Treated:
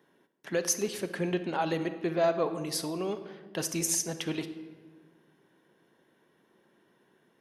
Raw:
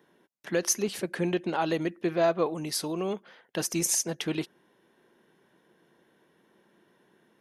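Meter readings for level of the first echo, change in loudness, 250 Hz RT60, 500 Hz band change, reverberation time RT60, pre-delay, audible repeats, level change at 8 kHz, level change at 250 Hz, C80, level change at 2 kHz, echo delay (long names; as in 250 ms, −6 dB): no echo audible, −2.0 dB, 2.0 s, −1.5 dB, 1.4 s, 7 ms, no echo audible, −2.0 dB, −2.5 dB, 13.0 dB, −2.0 dB, no echo audible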